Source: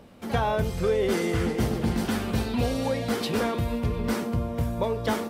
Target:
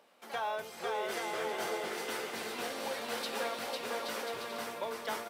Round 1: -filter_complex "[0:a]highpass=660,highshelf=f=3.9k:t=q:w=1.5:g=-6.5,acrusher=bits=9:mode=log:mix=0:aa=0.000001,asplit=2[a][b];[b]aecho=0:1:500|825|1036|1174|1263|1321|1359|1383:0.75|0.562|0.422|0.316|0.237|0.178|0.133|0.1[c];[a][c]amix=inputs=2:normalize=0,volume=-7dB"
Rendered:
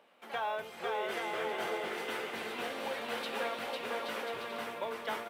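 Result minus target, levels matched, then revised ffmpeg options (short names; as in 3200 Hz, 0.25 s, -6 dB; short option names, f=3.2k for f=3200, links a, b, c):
8000 Hz band -7.5 dB
-filter_complex "[0:a]highpass=660,acrusher=bits=9:mode=log:mix=0:aa=0.000001,asplit=2[a][b];[b]aecho=0:1:500|825|1036|1174|1263|1321|1359|1383:0.75|0.562|0.422|0.316|0.237|0.178|0.133|0.1[c];[a][c]amix=inputs=2:normalize=0,volume=-7dB"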